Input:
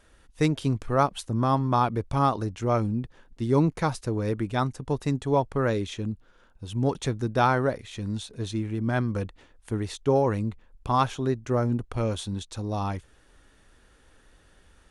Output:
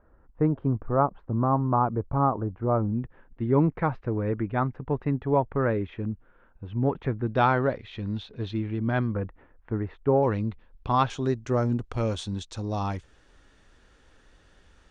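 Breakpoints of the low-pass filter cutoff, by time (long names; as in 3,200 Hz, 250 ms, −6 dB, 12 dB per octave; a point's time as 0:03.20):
low-pass filter 24 dB per octave
1,300 Hz
from 0:02.93 2,200 Hz
from 0:07.27 3,700 Hz
from 0:09.15 1,900 Hz
from 0:10.23 4,400 Hz
from 0:11.10 7,500 Hz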